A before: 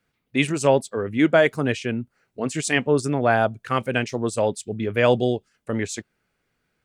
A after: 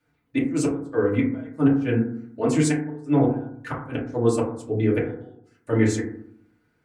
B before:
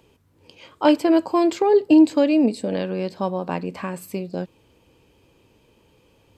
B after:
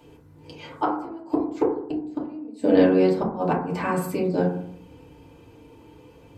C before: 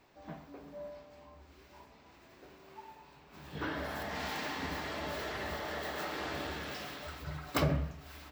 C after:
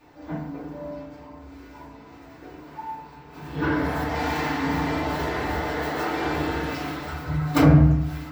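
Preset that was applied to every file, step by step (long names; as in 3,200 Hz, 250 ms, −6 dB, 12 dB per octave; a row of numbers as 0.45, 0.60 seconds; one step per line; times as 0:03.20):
gate with flip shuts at −12 dBFS, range −33 dB
feedback delay network reverb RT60 0.65 s, low-frequency decay 1.35×, high-frequency decay 0.25×, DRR −7 dB
loudness normalisation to −24 LKFS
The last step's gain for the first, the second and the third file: −5.0, −1.5, +3.0 decibels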